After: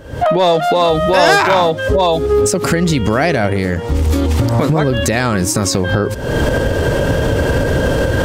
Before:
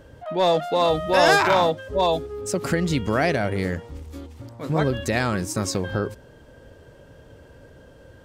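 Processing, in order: recorder AGC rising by 79 dB/s; in parallel at -1 dB: peak limiter -19 dBFS, peak gain reduction 11.5 dB; on the sum: trim +4 dB

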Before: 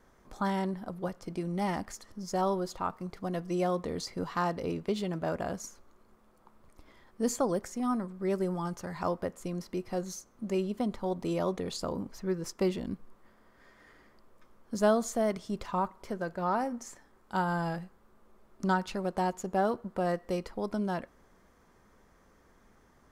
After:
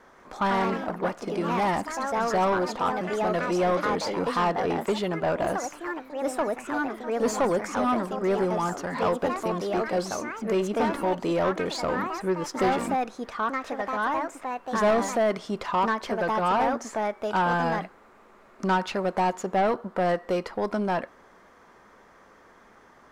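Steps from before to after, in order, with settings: ever faster or slower copies 159 ms, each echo +3 st, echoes 3, each echo -6 dB; overdrive pedal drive 20 dB, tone 2.1 kHz, clips at -14 dBFS

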